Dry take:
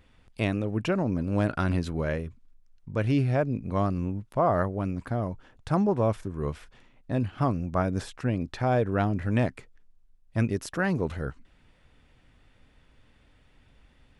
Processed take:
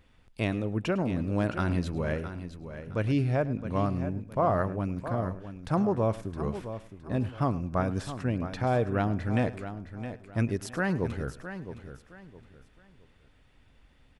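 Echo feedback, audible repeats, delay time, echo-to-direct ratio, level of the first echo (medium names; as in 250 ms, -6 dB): no regular repeats, 6, 105 ms, -10.0 dB, -18.0 dB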